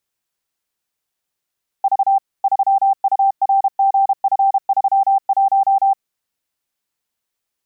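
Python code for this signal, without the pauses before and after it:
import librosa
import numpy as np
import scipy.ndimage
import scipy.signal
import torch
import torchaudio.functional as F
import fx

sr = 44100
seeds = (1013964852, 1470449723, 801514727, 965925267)

y = fx.morse(sr, text='V 3URGF31', wpm=32, hz=784.0, level_db=-10.5)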